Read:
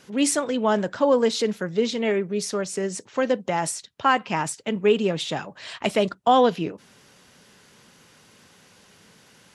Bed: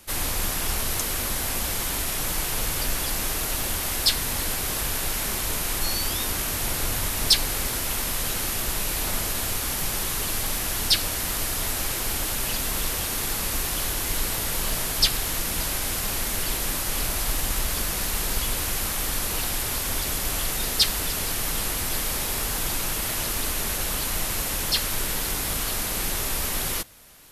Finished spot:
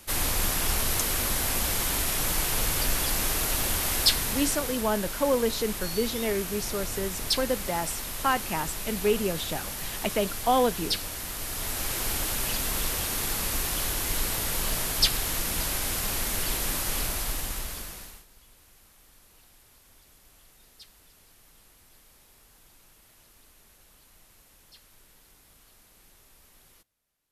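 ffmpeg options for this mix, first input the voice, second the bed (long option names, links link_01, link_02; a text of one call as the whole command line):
ffmpeg -i stem1.wav -i stem2.wav -filter_complex "[0:a]adelay=4200,volume=-5.5dB[link_01];[1:a]volume=6dB,afade=type=out:start_time=4.01:duration=0.83:silence=0.398107,afade=type=in:start_time=11.38:duration=0.65:silence=0.501187,afade=type=out:start_time=16.89:duration=1.36:silence=0.0375837[link_02];[link_01][link_02]amix=inputs=2:normalize=0" out.wav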